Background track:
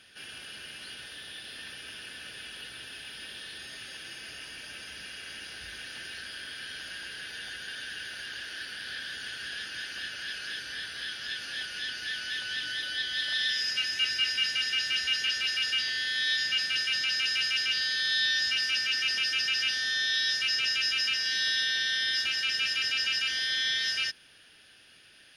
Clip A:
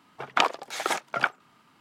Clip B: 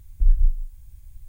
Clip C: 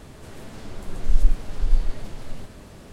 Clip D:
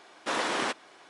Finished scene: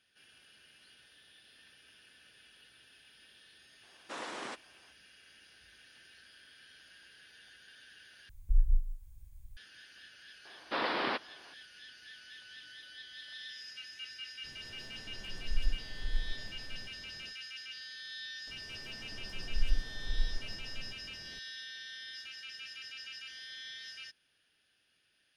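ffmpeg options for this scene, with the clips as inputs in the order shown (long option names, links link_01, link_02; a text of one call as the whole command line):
ffmpeg -i bed.wav -i cue0.wav -i cue1.wav -i cue2.wav -i cue3.wav -filter_complex "[4:a]asplit=2[link_01][link_02];[3:a]asplit=2[link_03][link_04];[0:a]volume=-17.5dB[link_05];[link_02]aresample=11025,aresample=44100[link_06];[link_05]asplit=2[link_07][link_08];[link_07]atrim=end=8.294[link_09];[2:a]atrim=end=1.28,asetpts=PTS-STARTPTS,volume=-9dB[link_10];[link_08]atrim=start=9.566[link_11];[link_01]atrim=end=1.09,asetpts=PTS-STARTPTS,volume=-12.5dB,afade=type=in:duration=0.004:curve=hsin,afade=type=out:start_time=1.086:duration=0.004:curve=hsin,adelay=3830[link_12];[link_06]atrim=end=1.09,asetpts=PTS-STARTPTS,volume=-3.5dB,afade=type=in:duration=0.004:curve=hsin,afade=type=out:start_time=1.086:duration=0.004:curve=hsin,adelay=10450[link_13];[link_03]atrim=end=2.92,asetpts=PTS-STARTPTS,volume=-14.5dB,afade=type=in:duration=0.05,afade=type=out:start_time=2.87:duration=0.05,adelay=14420[link_14];[link_04]atrim=end=2.92,asetpts=PTS-STARTPTS,volume=-13dB,afade=type=in:duration=0.004:curve=hsin,afade=type=out:start_time=2.916:duration=0.004:curve=hsin,adelay=18470[link_15];[link_09][link_10]acrossfade=duration=0.004:curve1=hsin:curve2=hsin[link_16];[link_16][link_11]acrossfade=duration=0.004:curve1=hsin:curve2=hsin[link_17];[link_17][link_12][link_13][link_14][link_15]amix=inputs=5:normalize=0" out.wav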